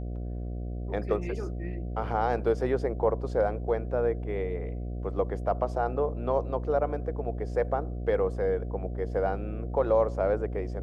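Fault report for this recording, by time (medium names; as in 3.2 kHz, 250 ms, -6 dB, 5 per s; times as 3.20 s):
buzz 60 Hz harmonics 12 -34 dBFS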